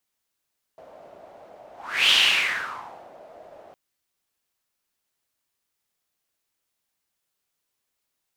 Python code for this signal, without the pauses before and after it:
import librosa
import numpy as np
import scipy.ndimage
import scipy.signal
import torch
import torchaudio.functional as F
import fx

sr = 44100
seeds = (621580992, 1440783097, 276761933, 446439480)

y = fx.whoosh(sr, seeds[0], length_s=2.96, peak_s=1.33, rise_s=0.4, fall_s=1.08, ends_hz=630.0, peak_hz=3100.0, q=5.3, swell_db=29.0)